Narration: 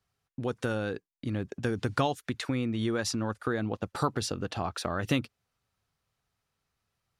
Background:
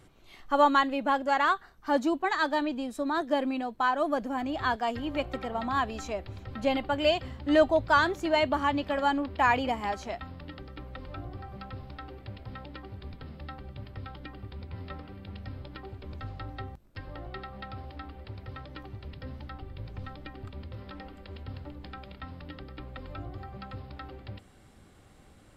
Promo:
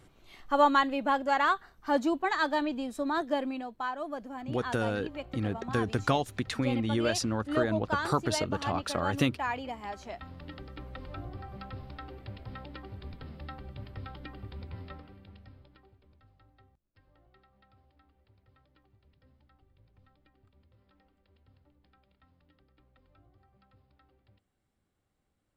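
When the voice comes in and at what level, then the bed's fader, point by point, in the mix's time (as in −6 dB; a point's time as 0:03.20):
4.10 s, +0.5 dB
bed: 0:03.18 −1 dB
0:03.98 −9 dB
0:09.77 −9 dB
0:10.51 −1 dB
0:14.68 −1 dB
0:16.23 −23.5 dB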